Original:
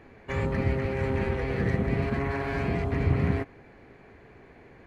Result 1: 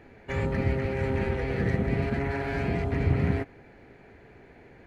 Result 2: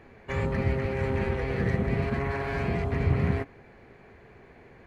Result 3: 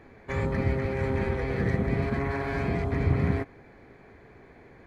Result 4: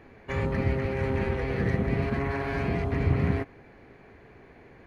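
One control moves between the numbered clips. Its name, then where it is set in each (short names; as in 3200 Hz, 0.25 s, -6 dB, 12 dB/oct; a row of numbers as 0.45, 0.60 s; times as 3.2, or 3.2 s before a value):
notch, frequency: 1100, 290, 2800, 7600 Hz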